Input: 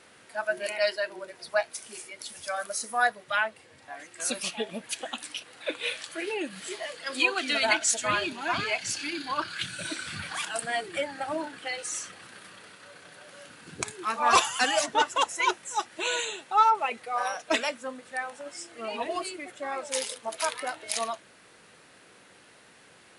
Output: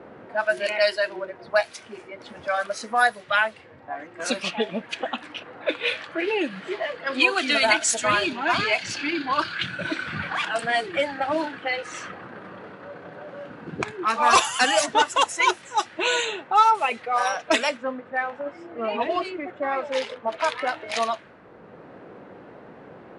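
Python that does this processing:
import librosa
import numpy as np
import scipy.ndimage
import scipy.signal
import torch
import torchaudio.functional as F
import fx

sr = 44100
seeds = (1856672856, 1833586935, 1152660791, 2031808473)

y = fx.lowpass(x, sr, hz=3300.0, slope=6, at=(17.77, 20.59))
y = fx.env_lowpass(y, sr, base_hz=710.0, full_db=-22.5)
y = fx.band_squash(y, sr, depth_pct=40)
y = y * librosa.db_to_amplitude(6.5)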